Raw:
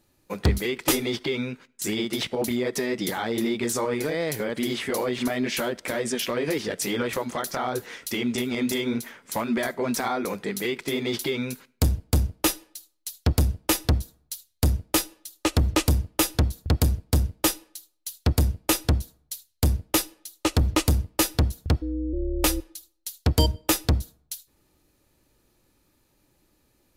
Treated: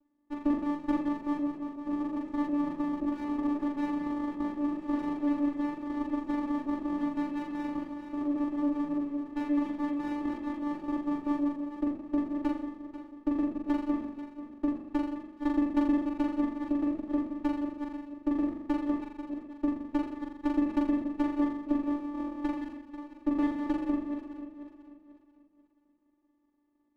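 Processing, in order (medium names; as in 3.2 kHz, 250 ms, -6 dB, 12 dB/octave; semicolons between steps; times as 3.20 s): backward echo that repeats 245 ms, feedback 58%, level -8 dB; low-pass 1.3 kHz 24 dB/octave; vocoder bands 4, square 292 Hz; on a send: flutter echo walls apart 7.2 m, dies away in 0.86 s; on the sum: sliding maximum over 17 samples; trim -3 dB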